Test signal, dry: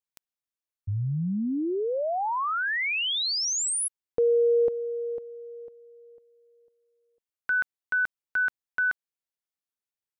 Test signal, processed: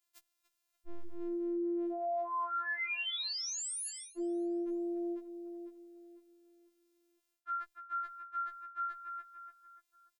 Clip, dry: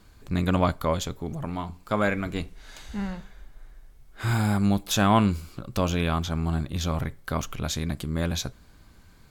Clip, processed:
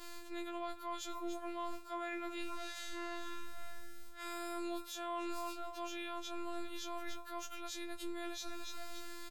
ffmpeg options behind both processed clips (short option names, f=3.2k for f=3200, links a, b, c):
-filter_complex "[0:a]equalizer=f=61:w=2.3:g=11.5,afftfilt=real='hypot(re,im)*cos(PI*b)':imag='0':win_size=512:overlap=0.75,lowshelf=f=260:g=-11.5,bandreject=f=60:t=h:w=6,bandreject=f=120:t=h:w=6,asplit=2[a][b];[b]adelay=291,lowpass=f=3.4k:p=1,volume=-19dB,asplit=2[c][d];[d]adelay=291,lowpass=f=3.4k:p=1,volume=0.46,asplit=2[e][f];[f]adelay=291,lowpass=f=3.4k:p=1,volume=0.46,asplit=2[g][h];[h]adelay=291,lowpass=f=3.4k:p=1,volume=0.46[i];[c][e][g][i]amix=inputs=4:normalize=0[j];[a][j]amix=inputs=2:normalize=0,alimiter=limit=-22.5dB:level=0:latency=1:release=423,areverse,acompressor=threshold=-47dB:ratio=12:attack=0.77:release=126:knee=1:detection=rms,areverse,afftfilt=real='re*4*eq(mod(b,16),0)':imag='im*4*eq(mod(b,16),0)':win_size=2048:overlap=0.75,volume=4.5dB"